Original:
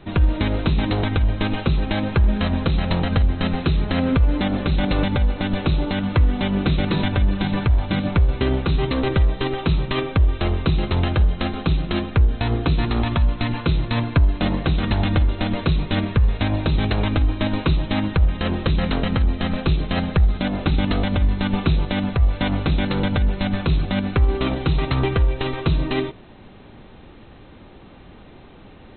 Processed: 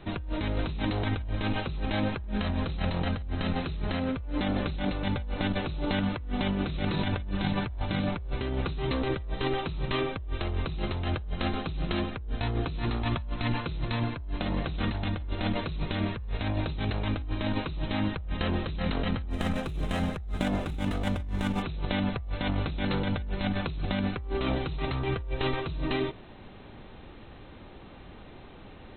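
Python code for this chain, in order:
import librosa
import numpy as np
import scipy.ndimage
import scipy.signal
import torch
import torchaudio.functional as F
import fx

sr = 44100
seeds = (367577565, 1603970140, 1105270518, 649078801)

y = fx.median_filter(x, sr, points=9, at=(19.29, 21.61), fade=0.02)
y = fx.peak_eq(y, sr, hz=210.0, db=-2.5, octaves=1.9)
y = fx.over_compress(y, sr, threshold_db=-24.0, ratio=-1.0)
y = y * librosa.db_to_amplitude(-6.0)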